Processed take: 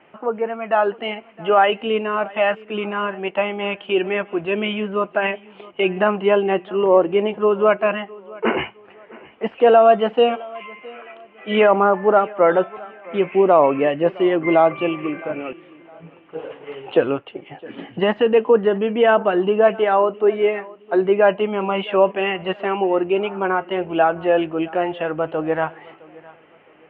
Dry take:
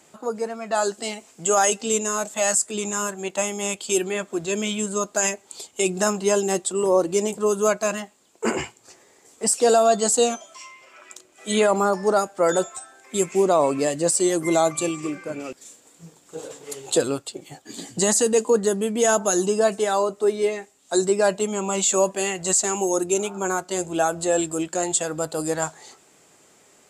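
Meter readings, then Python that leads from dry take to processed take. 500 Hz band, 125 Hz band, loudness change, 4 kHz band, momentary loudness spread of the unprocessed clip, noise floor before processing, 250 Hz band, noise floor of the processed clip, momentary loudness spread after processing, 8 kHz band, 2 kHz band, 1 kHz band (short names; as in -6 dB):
+5.0 dB, +2.0 dB, +3.5 dB, +0.5 dB, 14 LU, -56 dBFS, +3.0 dB, -49 dBFS, 14 LU, under -40 dB, +5.5 dB, +6.0 dB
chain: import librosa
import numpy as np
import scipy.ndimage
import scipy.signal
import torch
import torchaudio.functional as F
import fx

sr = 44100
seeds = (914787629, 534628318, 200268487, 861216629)

p1 = scipy.signal.sosfilt(scipy.signal.cheby1(6, 1.0, 3000.0, 'lowpass', fs=sr, output='sos'), x)
p2 = fx.low_shelf(p1, sr, hz=290.0, db=-5.5)
p3 = p2 + fx.echo_feedback(p2, sr, ms=663, feedback_pct=34, wet_db=-22, dry=0)
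y = p3 * librosa.db_to_amplitude(6.5)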